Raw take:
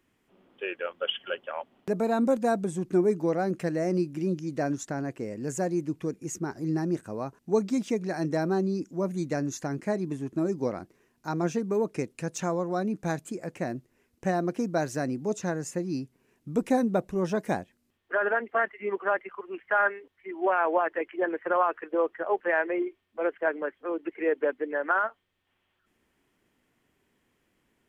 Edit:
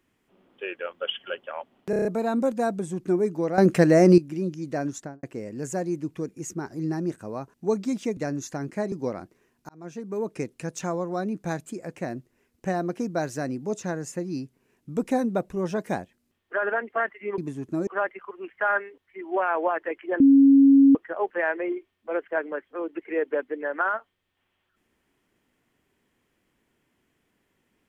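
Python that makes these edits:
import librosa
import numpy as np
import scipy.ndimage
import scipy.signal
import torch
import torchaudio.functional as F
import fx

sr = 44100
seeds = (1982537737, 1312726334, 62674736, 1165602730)

y = fx.studio_fade_out(x, sr, start_s=4.82, length_s=0.26)
y = fx.edit(y, sr, fx.stutter(start_s=1.9, slice_s=0.03, count=6),
    fx.clip_gain(start_s=3.43, length_s=0.6, db=11.5),
    fx.cut(start_s=8.02, length_s=1.25),
    fx.move(start_s=10.02, length_s=0.49, to_s=18.97),
    fx.fade_in_span(start_s=11.28, length_s=0.69),
    fx.bleep(start_s=21.3, length_s=0.75, hz=275.0, db=-11.0), tone=tone)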